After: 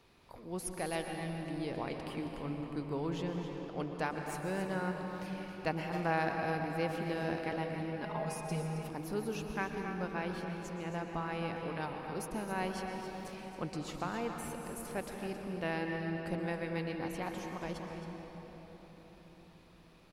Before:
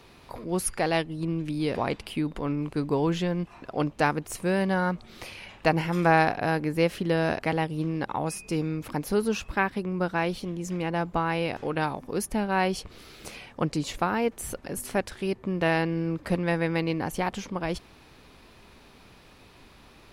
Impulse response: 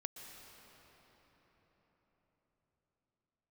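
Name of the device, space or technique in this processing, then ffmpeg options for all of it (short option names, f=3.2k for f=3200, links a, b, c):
cave: -filter_complex "[0:a]aecho=1:1:270:0.299[a];[1:a]atrim=start_sample=2205[b];[a][b]afir=irnorm=-1:irlink=0,asettb=1/sr,asplit=3[c][d][e];[c]atrim=end=8.024[f];[d]atrim=start=8.02:end=8.89,asetpts=PTS-STARTPTS,afade=t=in:d=0.004:c=qsin,afade=t=out:st=0.866:d=0.004:c=qsin,aecho=1:1:4.8:0.83,atrim=end_sample=38367[g];[e]atrim=start=8.886[h];[f][g]acrossfade=d=0.004:c1=hsin:c2=qsin[i];[i][h]acrossfade=d=0.004:c1=qsin:c2=hsin,volume=-8dB"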